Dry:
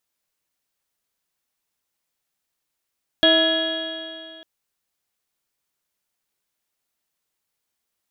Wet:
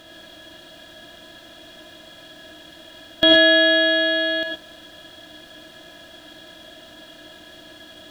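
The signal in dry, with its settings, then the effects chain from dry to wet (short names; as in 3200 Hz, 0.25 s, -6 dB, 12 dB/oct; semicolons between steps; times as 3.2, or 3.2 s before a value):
stretched partials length 1.20 s, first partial 321 Hz, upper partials 3/-15/-14/-0.5/-19.5/-18.5/-10/5.5/-11/-19 dB, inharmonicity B 0.0039, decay 2.39 s, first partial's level -19.5 dB
per-bin compression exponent 0.4; non-linear reverb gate 0.14 s rising, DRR 0.5 dB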